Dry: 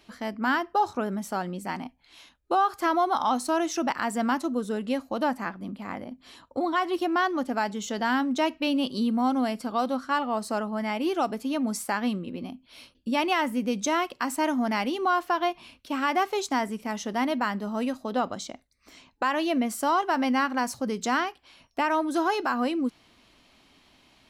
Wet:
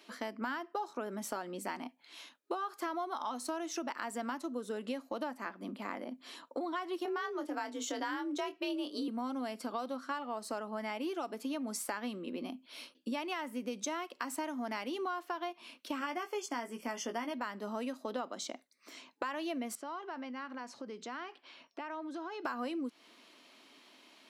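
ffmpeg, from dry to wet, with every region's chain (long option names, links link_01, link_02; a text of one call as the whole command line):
ffmpeg -i in.wav -filter_complex "[0:a]asettb=1/sr,asplit=3[link_01][link_02][link_03];[link_01]atrim=end=7.054[link_04];[link_02]atrim=start=7.05:end=9.08,asetpts=PTS-STARTPTS,afade=type=in:duration=0.004:curve=qsin,afade=type=out:start_time=2.026:duration=0.004:curve=qsin,afreqshift=46,asplit=2[link_05][link_06];[link_06]adelay=24,volume=-9dB[link_07];[link_05][link_07]amix=inputs=2:normalize=0,atrim=end_sample=89523[link_08];[link_03]atrim=start=9.076[link_09];[link_04][link_08]acrossfade=duration=0.004:curve1=hsin:curve2=qsin[link_10];[link_10][link_09]acrossfade=duration=0.004:curve1=qsin:curve2=hsin,asettb=1/sr,asplit=3[link_11][link_12][link_13];[link_11]atrim=end=15.994[link_14];[link_12]atrim=start=15.99:end=17.34,asetpts=PTS-STARTPTS,afade=type=in:duration=0.004:curve=qsin,afade=type=out:start_time=1.346:duration=0.004:curve=qsin,asuperstop=centerf=3900:order=20:qfactor=5.9,asplit=2[link_15][link_16];[link_16]adelay=17,volume=-6.5dB[link_17];[link_15][link_17]amix=inputs=2:normalize=0,atrim=end_sample=59535[link_18];[link_13]atrim=start=17.336[link_19];[link_14][link_18]acrossfade=duration=0.004:curve1=hsin:curve2=qsin[link_20];[link_20][link_19]acrossfade=duration=0.004:curve1=qsin:curve2=hsin,asettb=1/sr,asplit=3[link_21][link_22][link_23];[link_21]atrim=end=19.754[link_24];[link_22]atrim=start=19.75:end=22.45,asetpts=PTS-STARTPTS,afade=type=in:duration=0.004:curve=qsin,afade=type=out:start_time=2.696:duration=0.004:curve=qsin,acompressor=threshold=-41dB:ratio=4:attack=3.2:release=140:knee=1:detection=peak,lowpass=4500[link_25];[link_23]atrim=start=22.446[link_26];[link_24][link_25]acrossfade=duration=0.004:curve1=hsin:curve2=qsin[link_27];[link_27][link_26]acrossfade=duration=0.004:curve1=qsin:curve2=hsin,highpass=frequency=250:width=0.5412,highpass=frequency=250:width=1.3066,bandreject=frequency=780:width=12,acompressor=threshold=-35dB:ratio=6" out.wav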